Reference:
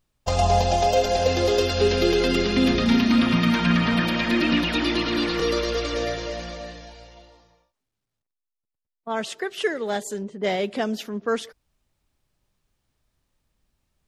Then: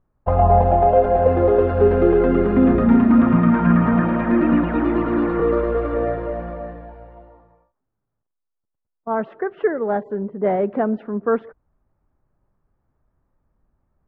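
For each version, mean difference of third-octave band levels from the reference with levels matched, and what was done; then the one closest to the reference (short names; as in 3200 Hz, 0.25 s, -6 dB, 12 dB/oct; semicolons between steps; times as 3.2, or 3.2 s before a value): 8.0 dB: LPF 1400 Hz 24 dB/oct; gain +5.5 dB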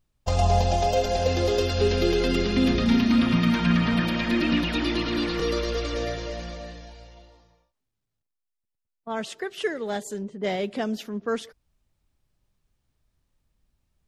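1.5 dB: low shelf 200 Hz +6.5 dB; gain -4 dB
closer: second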